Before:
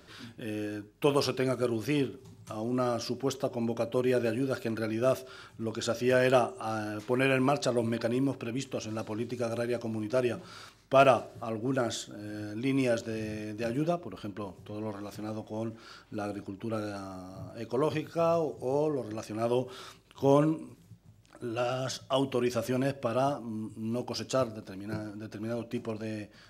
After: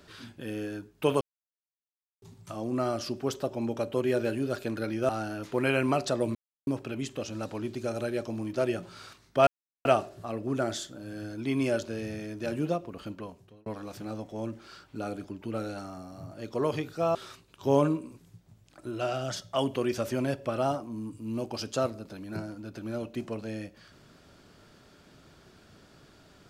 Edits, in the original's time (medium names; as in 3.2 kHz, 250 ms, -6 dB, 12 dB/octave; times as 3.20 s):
1.21–2.22 s: mute
5.09–6.65 s: delete
7.91–8.23 s: mute
11.03 s: insert silence 0.38 s
14.30–14.84 s: fade out linear
18.33–19.72 s: delete